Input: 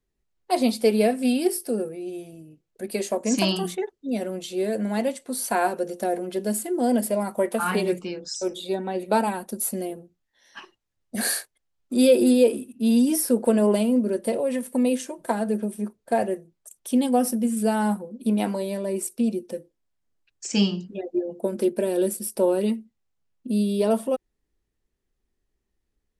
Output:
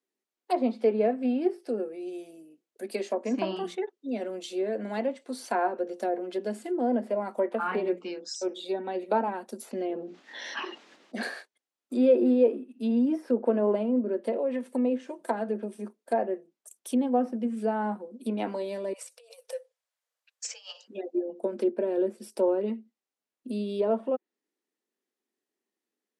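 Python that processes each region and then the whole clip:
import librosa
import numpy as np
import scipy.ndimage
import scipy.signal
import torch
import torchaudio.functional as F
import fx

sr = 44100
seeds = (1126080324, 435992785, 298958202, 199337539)

y = fx.chain(x, sr, fx.lowpass(hz=4100.0, slope=12),
    fx.env_flatten(amount_pct=70), at=(9.71, 11.23))
y = fx.chain(y, sr, fx.peak_eq(hz=680.0, db=-4.5, octaves=0.94),
    fx.over_compress(threshold_db=-31.0, ratio=-1.0),
    fx.brickwall_highpass(low_hz=450.0), at=(18.93, 20.88))
y = scipy.signal.sosfilt(scipy.signal.butter(6, 230.0, 'highpass', fs=sr, output='sos'), y)
y = fx.env_lowpass_down(y, sr, base_hz=1500.0, full_db=-20.0)
y = y * librosa.db_to_amplitude(-3.5)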